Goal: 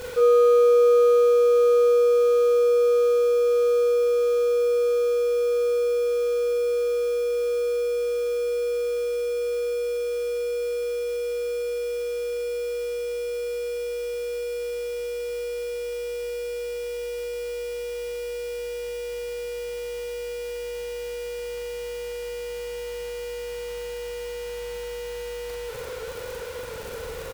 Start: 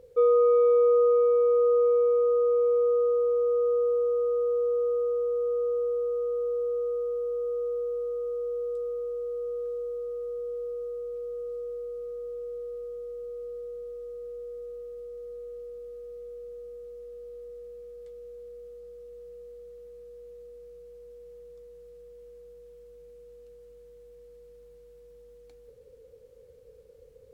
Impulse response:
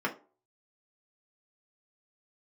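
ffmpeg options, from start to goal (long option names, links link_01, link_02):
-filter_complex "[0:a]aeval=exprs='val(0)+0.5*0.0282*sgn(val(0))':channel_layout=same,equalizer=frequency=320:width_type=o:width=0.37:gain=-4.5,asplit=2[link_01][link_02];[link_02]adelay=42,volume=-3dB[link_03];[link_01][link_03]amix=inputs=2:normalize=0"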